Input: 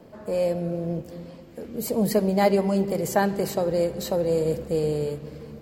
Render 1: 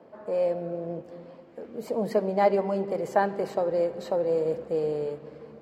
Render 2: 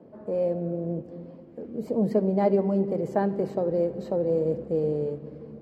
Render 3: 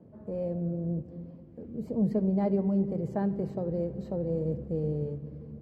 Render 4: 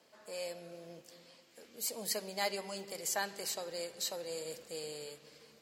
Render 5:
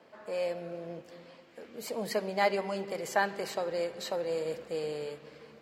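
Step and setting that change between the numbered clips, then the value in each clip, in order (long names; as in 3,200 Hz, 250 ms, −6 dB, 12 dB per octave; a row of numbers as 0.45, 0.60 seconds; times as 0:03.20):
resonant band-pass, frequency: 810, 310, 110, 6,000, 2,100 Hertz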